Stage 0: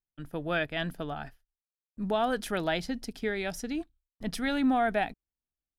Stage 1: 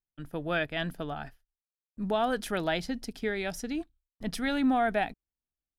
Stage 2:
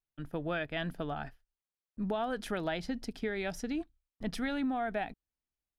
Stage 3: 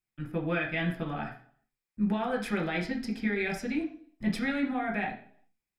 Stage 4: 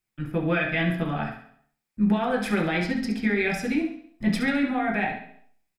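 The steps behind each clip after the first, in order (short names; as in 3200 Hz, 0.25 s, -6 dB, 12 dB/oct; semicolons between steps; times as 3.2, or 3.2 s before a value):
nothing audible
compressor, threshold -30 dBFS, peak gain reduction 8 dB; high shelf 5700 Hz -9 dB
reverb RT60 0.55 s, pre-delay 3 ms, DRR -0.5 dB
feedback echo 68 ms, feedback 43%, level -9.5 dB; gain +5.5 dB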